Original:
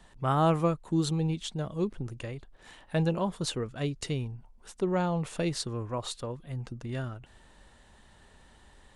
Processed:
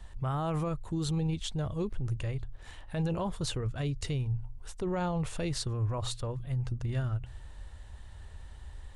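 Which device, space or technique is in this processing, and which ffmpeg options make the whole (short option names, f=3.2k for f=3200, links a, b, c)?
car stereo with a boomy subwoofer: -af "lowshelf=f=130:t=q:w=1.5:g=13,alimiter=level_in=1dB:limit=-24dB:level=0:latency=1:release=12,volume=-1dB,bandreject=f=59.9:t=h:w=4,bandreject=f=119.8:t=h:w=4"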